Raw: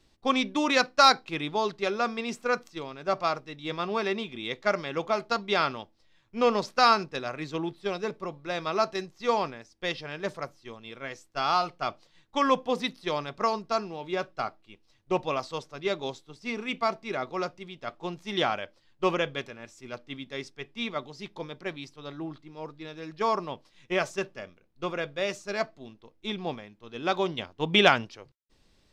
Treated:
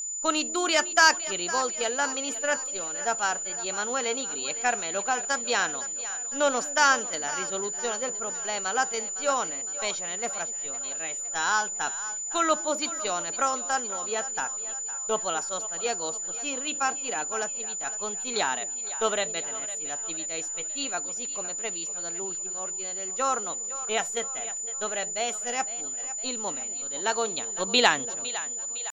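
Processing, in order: pitch shift +3 st; peaking EQ 99 Hz -11 dB 2.2 oct; on a send: two-band feedback delay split 510 Hz, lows 242 ms, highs 508 ms, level -15 dB; on the sum: whistle 7 kHz -31 dBFS

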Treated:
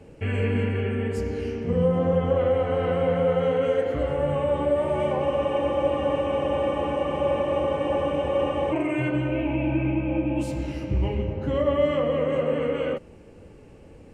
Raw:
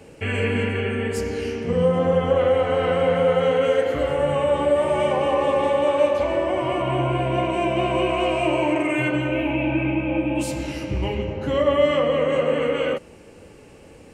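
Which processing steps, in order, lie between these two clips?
tilt EQ -2 dB/octave; spectral freeze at 5.27 s, 3.45 s; trim -5.5 dB

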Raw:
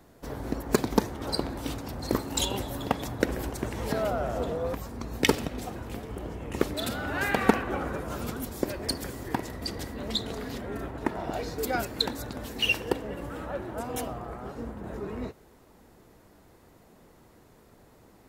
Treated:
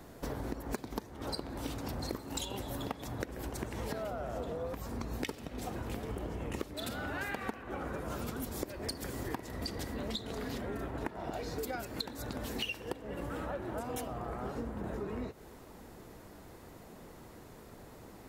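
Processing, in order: compression 16:1, threshold -39 dBFS, peak gain reduction 26.5 dB; trim +4.5 dB

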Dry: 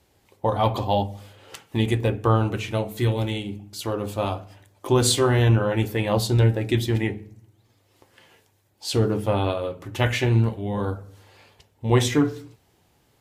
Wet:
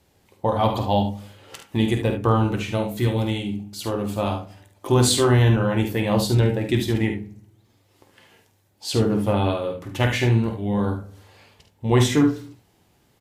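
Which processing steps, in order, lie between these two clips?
peaking EQ 190 Hz +3.5 dB 0.78 oct; early reflections 49 ms -8.5 dB, 73 ms -9.5 dB

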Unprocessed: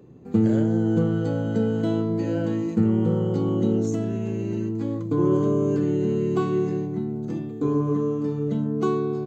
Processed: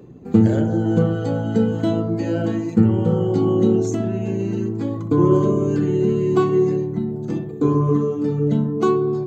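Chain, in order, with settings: reverb removal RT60 0.83 s; filtered feedback delay 62 ms, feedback 73%, low-pass 1.9 kHz, level -8.5 dB; trim +6.5 dB

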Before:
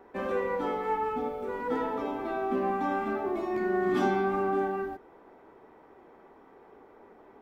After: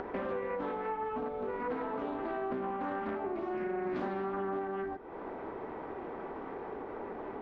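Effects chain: upward compressor, threshold -37 dBFS; distance through air 230 m; compression 5:1, threshold -40 dBFS, peak gain reduction 15.5 dB; loudspeaker Doppler distortion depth 0.37 ms; trim +6 dB

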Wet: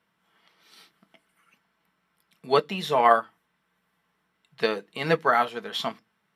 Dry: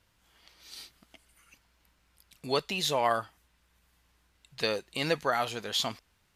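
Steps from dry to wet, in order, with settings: reverberation RT60 0.15 s, pre-delay 3 ms, DRR 7.5 dB; upward expansion 1.5:1, over -32 dBFS

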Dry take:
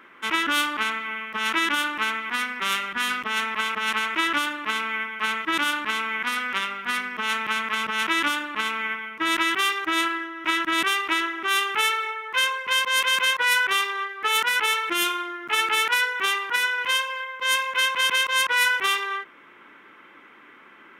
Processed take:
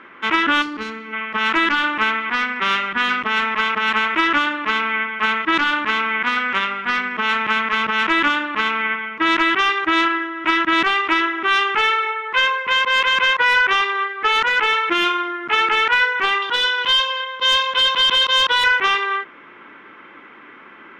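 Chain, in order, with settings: 0.62–1.13 s: time-frequency box 540–3900 Hz -12 dB; 16.42–18.64 s: resonant high shelf 2.8 kHz +6.5 dB, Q 3; hard clipper -17.5 dBFS, distortion -11 dB; distance through air 190 m; trim +8.5 dB

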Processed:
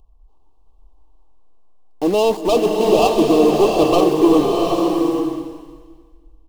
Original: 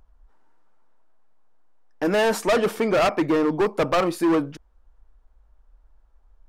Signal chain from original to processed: median filter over 15 samples; elliptic band-stop 1.1–2.7 kHz; comb 2.6 ms, depth 35%; in parallel at -9 dB: bit crusher 5-bit; on the sum: swelling reverb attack 800 ms, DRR 0 dB; trim +2 dB

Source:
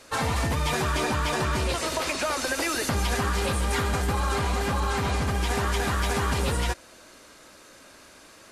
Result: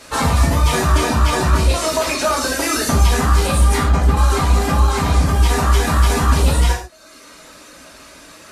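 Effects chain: 3.76–4.17 s: low-pass 3.6 kHz 6 dB/octave; reverb removal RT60 0.9 s; dynamic bell 2.3 kHz, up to -5 dB, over -44 dBFS, Q 0.82; gated-style reverb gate 170 ms falling, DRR -3 dB; trim +7 dB

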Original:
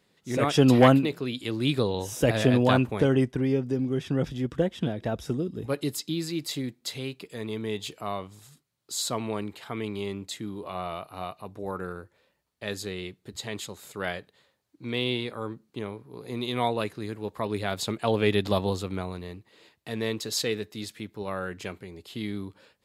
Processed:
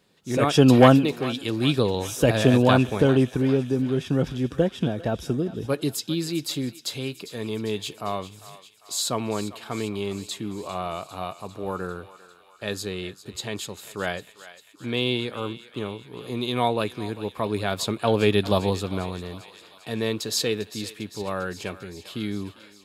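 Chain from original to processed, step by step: band-stop 2 kHz, Q 9.5; on a send: thinning echo 399 ms, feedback 69%, high-pass 880 Hz, level -14 dB; on the sum: trim +3.5 dB

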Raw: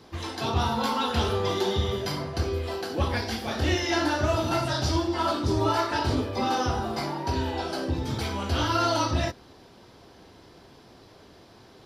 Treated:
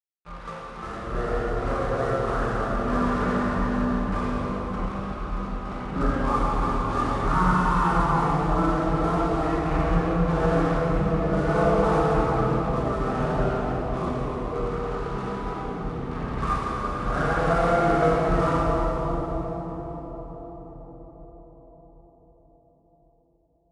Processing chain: resonant low-pass 2.4 kHz, resonance Q 8.5; crossover distortion -37 dBFS; random-step tremolo; plate-style reverb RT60 3.5 s, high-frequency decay 0.45×, DRR -6 dB; speed mistake 15 ips tape played at 7.5 ips; trim -2 dB

